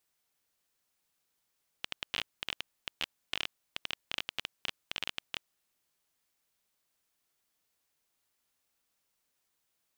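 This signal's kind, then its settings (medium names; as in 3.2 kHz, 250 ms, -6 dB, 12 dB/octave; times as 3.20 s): random clicks 15 per s -15.5 dBFS 3.59 s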